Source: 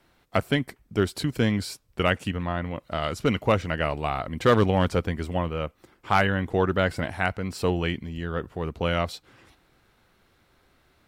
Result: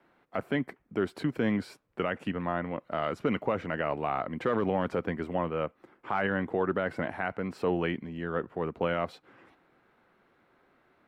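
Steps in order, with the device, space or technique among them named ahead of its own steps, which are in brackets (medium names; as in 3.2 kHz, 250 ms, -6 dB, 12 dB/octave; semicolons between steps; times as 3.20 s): DJ mixer with the lows and highs turned down (three-band isolator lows -18 dB, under 160 Hz, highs -18 dB, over 2.4 kHz; peak limiter -17.5 dBFS, peak gain reduction 10.5 dB)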